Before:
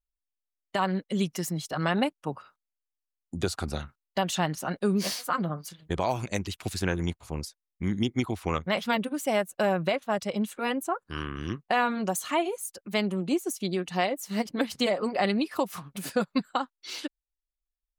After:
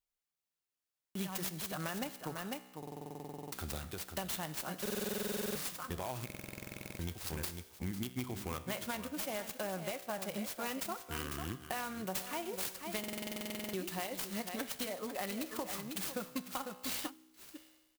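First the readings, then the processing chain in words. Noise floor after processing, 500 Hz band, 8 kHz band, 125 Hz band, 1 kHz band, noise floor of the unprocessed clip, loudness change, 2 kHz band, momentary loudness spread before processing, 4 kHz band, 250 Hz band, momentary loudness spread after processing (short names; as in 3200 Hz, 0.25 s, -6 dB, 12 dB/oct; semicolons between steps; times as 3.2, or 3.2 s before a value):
under -85 dBFS, -12.5 dB, -4.0 dB, -11.5 dB, -13.0 dB, under -85 dBFS, -10.0 dB, -10.5 dB, 10 LU, -8.0 dB, -12.5 dB, 7 LU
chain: on a send: echo 0.498 s -11.5 dB; on the sum: vocal rider within 4 dB 0.5 s; pre-emphasis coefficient 0.8; compressor, threshold -40 dBFS, peak gain reduction 11 dB; bell 86 Hz +4 dB 0.45 oct; resonator 63 Hz, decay 1.2 s, harmonics all, mix 60%; one-sided clip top -41.5 dBFS; spectral gain 17.09–17.56, 440–7400 Hz -16 dB; stuck buffer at 0.41/2.78/4.81/6.25/12.99, samples 2048, times 15; clock jitter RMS 0.051 ms; gain +12 dB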